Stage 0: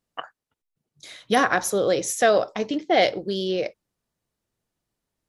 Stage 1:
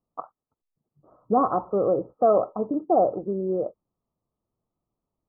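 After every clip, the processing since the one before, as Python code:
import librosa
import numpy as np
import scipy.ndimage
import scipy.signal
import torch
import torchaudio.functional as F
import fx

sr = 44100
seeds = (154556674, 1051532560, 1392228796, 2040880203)

y = scipy.signal.sosfilt(scipy.signal.cheby1(8, 1.0, 1300.0, 'lowpass', fs=sr, output='sos'), x)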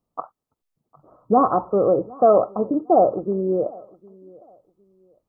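y = fx.echo_feedback(x, sr, ms=756, feedback_pct=26, wet_db=-24.0)
y = y * librosa.db_to_amplitude(4.5)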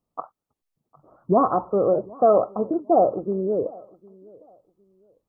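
y = fx.record_warp(x, sr, rpm=78.0, depth_cents=250.0)
y = y * librosa.db_to_amplitude(-2.0)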